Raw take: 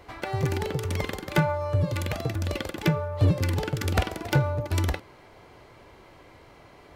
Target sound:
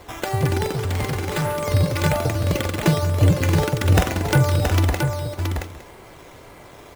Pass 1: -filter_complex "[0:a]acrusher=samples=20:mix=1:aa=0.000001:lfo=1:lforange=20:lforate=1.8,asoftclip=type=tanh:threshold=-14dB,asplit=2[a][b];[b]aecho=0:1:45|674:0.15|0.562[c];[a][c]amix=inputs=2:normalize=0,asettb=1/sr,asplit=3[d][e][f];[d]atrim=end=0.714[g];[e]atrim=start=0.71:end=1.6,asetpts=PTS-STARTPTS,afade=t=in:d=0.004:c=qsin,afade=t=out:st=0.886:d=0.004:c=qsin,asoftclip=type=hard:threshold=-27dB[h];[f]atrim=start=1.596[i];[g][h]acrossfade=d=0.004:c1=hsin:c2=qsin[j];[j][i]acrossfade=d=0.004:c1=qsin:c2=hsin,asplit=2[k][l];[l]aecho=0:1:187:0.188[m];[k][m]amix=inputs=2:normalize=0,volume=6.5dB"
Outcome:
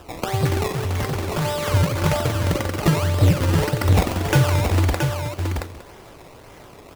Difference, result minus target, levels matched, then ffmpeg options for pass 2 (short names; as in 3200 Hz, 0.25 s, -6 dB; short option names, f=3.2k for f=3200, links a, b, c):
decimation with a swept rate: distortion +6 dB
-filter_complex "[0:a]acrusher=samples=7:mix=1:aa=0.000001:lfo=1:lforange=7:lforate=1.8,asoftclip=type=tanh:threshold=-14dB,asplit=2[a][b];[b]aecho=0:1:45|674:0.15|0.562[c];[a][c]amix=inputs=2:normalize=0,asettb=1/sr,asplit=3[d][e][f];[d]atrim=end=0.714[g];[e]atrim=start=0.71:end=1.6,asetpts=PTS-STARTPTS,afade=t=in:d=0.004:c=qsin,afade=t=out:st=0.886:d=0.004:c=qsin,asoftclip=type=hard:threshold=-27dB[h];[f]atrim=start=1.596[i];[g][h]acrossfade=d=0.004:c1=hsin:c2=qsin[j];[j][i]acrossfade=d=0.004:c1=qsin:c2=hsin,asplit=2[k][l];[l]aecho=0:1:187:0.188[m];[k][m]amix=inputs=2:normalize=0,volume=6.5dB"